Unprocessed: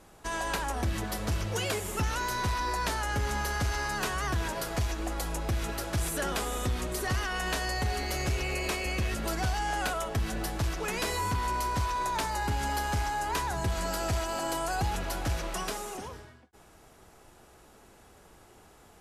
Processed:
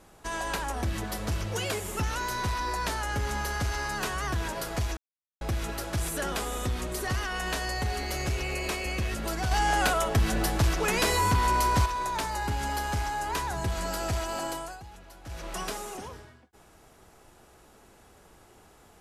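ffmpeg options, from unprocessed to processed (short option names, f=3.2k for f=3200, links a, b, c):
-filter_complex "[0:a]asettb=1/sr,asplit=3[a][b][c];[a]atrim=end=9.514[d];[b]atrim=start=9.51:end=11.86,asetpts=PTS-STARTPTS,afade=t=in:d=0.004:c=qsin,afade=t=out:st=2.346:d=0.004:c=qsin,acontrast=55[e];[c]atrim=start=11.856[f];[d][e]acrossfade=d=0.004:c1=hsin:c2=qsin[g];[g][f]acrossfade=d=0.004:c1=qsin:c2=hsin,asplit=5[h][i][j][k][l];[h]atrim=end=4.97,asetpts=PTS-STARTPTS,afade=t=out:st=4.966:d=0.004:c=hsin[m];[i]atrim=start=4.97:end=5.41,asetpts=PTS-STARTPTS,volume=0[n];[j]atrim=start=5.41:end=14.8,asetpts=PTS-STARTPTS,afade=t=in:d=0.004:c=hsin,afade=t=out:st=9.01:d=0.38:silence=0.149624[o];[k]atrim=start=14.8:end=15.23,asetpts=PTS-STARTPTS,volume=-16.5dB[p];[l]atrim=start=15.23,asetpts=PTS-STARTPTS,afade=t=in:d=0.38:silence=0.149624[q];[m][n][o][p][q]concat=n=5:v=0:a=1"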